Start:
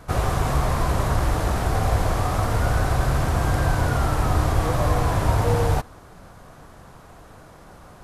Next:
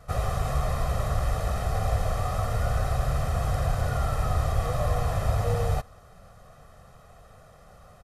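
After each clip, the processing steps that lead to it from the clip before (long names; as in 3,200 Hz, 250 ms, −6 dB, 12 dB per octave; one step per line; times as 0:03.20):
comb filter 1.6 ms, depth 74%
level −8.5 dB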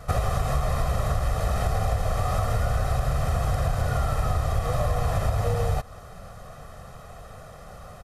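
downward compressor, threshold −29 dBFS, peak gain reduction 10.5 dB
level +8.5 dB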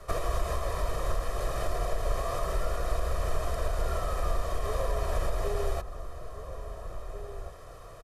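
frequency shifter −66 Hz
slap from a distant wall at 290 metres, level −10 dB
level −4 dB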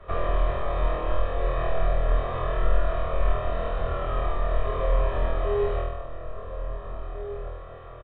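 high-frequency loss of the air 120 metres
flutter between parallel walls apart 4.2 metres, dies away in 0.87 s
downsampling to 8,000 Hz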